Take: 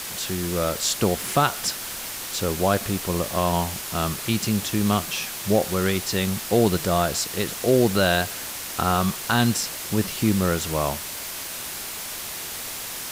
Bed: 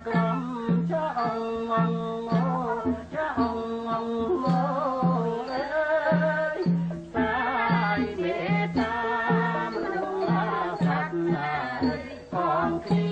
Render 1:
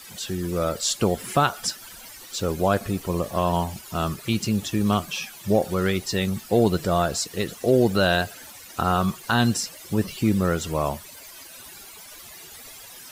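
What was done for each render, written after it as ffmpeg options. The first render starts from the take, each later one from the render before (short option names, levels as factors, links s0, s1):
-af "afftdn=nr=15:nf=-33"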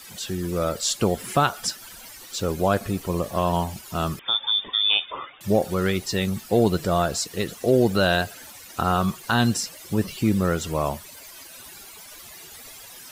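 -filter_complex "[0:a]asettb=1/sr,asplit=3[s0][s1][s2];[s0]atrim=end=4.194[s3];[s1]atrim=start=4.19:end=5.41,asetpts=PTS-STARTPTS,afade=t=in:d=0.004:c=qsin,afade=t=out:st=1.216:d=0.004:c=qsin,lowpass=f=3100:t=q:w=0.5098,lowpass=f=3100:t=q:w=0.6013,lowpass=f=3100:t=q:w=0.9,lowpass=f=3100:t=q:w=2.563,afreqshift=-3700[s4];[s2]atrim=start=5.406[s5];[s3][s4]acrossfade=d=0.004:c1=hsin:c2=qsin[s6];[s6][s5]acrossfade=d=0.004:c1=qsin:c2=hsin"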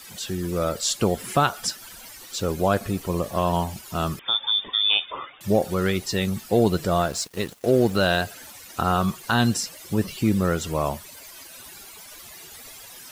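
-filter_complex "[0:a]asettb=1/sr,asplit=3[s0][s1][s2];[s0]atrim=end=7.014[s3];[s1]atrim=start=7.01:end=8.22,asetpts=PTS-STARTPTS,afade=t=in:d=0.004:c=qsin,afade=t=out:st=1.206:d=0.004:c=qsin,aeval=exprs='sgn(val(0))*max(abs(val(0))-0.01,0)':c=same[s4];[s2]atrim=start=8.216[s5];[s3][s4]acrossfade=d=0.004:c1=hsin:c2=qsin[s6];[s6][s5]acrossfade=d=0.004:c1=qsin:c2=hsin"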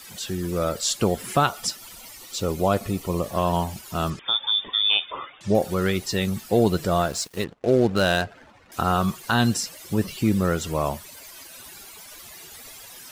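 -filter_complex "[0:a]asettb=1/sr,asplit=3[s0][s1][s2];[s0]atrim=end=1.464[s3];[s1]atrim=start=1.46:end=3.26,asetpts=PTS-STARTPTS,afade=t=in:d=0.004:c=qsin,afade=t=out:st=1.796:d=0.004:c=qsin,bandreject=f=1600:w=5.3[s4];[s2]atrim=start=3.256[s5];[s3][s4]acrossfade=d=0.004:c1=hsin:c2=qsin[s6];[s6][s5]acrossfade=d=0.004:c1=qsin:c2=hsin,asettb=1/sr,asplit=3[s7][s8][s9];[s7]atrim=end=4.104[s10];[s8]atrim=start=4.1:end=5.55,asetpts=PTS-STARTPTS,afade=t=in:d=0.004:c=qsin,afade=t=out:st=1.446:d=0.004:c=qsin,lowpass=f=7700:w=0.5412,lowpass=f=7700:w=1.3066[s11];[s9]atrim=start=5.546[s12];[s10][s11]acrossfade=d=0.004:c1=hsin:c2=qsin[s13];[s13][s12]acrossfade=d=0.004:c1=qsin:c2=hsin,asettb=1/sr,asplit=3[s14][s15][s16];[s14]atrim=end=7.444[s17];[s15]atrim=start=7.44:end=8.72,asetpts=PTS-STARTPTS,afade=t=in:d=0.004:c=qsin,afade=t=out:st=1.276:d=0.004:c=qsin,adynamicsmooth=sensitivity=6.5:basefreq=1200[s18];[s16]atrim=start=8.716[s19];[s17][s18]acrossfade=d=0.004:c1=hsin:c2=qsin[s20];[s20][s19]acrossfade=d=0.004:c1=qsin:c2=hsin"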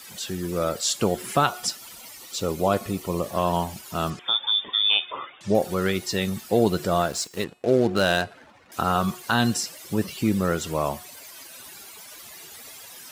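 -af "highpass=f=130:p=1,bandreject=f=362.8:t=h:w=4,bandreject=f=725.6:t=h:w=4,bandreject=f=1088.4:t=h:w=4,bandreject=f=1451.2:t=h:w=4,bandreject=f=1814:t=h:w=4,bandreject=f=2176.8:t=h:w=4,bandreject=f=2539.6:t=h:w=4,bandreject=f=2902.4:t=h:w=4,bandreject=f=3265.2:t=h:w=4,bandreject=f=3628:t=h:w=4,bandreject=f=3990.8:t=h:w=4,bandreject=f=4353.6:t=h:w=4,bandreject=f=4716.4:t=h:w=4,bandreject=f=5079.2:t=h:w=4,bandreject=f=5442:t=h:w=4,bandreject=f=5804.8:t=h:w=4,bandreject=f=6167.6:t=h:w=4,bandreject=f=6530.4:t=h:w=4,bandreject=f=6893.2:t=h:w=4,bandreject=f=7256:t=h:w=4,bandreject=f=7618.8:t=h:w=4,bandreject=f=7981.6:t=h:w=4,bandreject=f=8344.4:t=h:w=4,bandreject=f=8707.2:t=h:w=4,bandreject=f=9070:t=h:w=4,bandreject=f=9432.8:t=h:w=4,bandreject=f=9795.6:t=h:w=4,bandreject=f=10158.4:t=h:w=4,bandreject=f=10521.2:t=h:w=4,bandreject=f=10884:t=h:w=4,bandreject=f=11246.8:t=h:w=4,bandreject=f=11609.6:t=h:w=4,bandreject=f=11972.4:t=h:w=4,bandreject=f=12335.2:t=h:w=4,bandreject=f=12698:t=h:w=4"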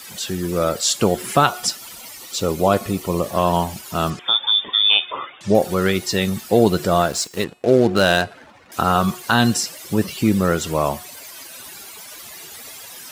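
-af "volume=1.88"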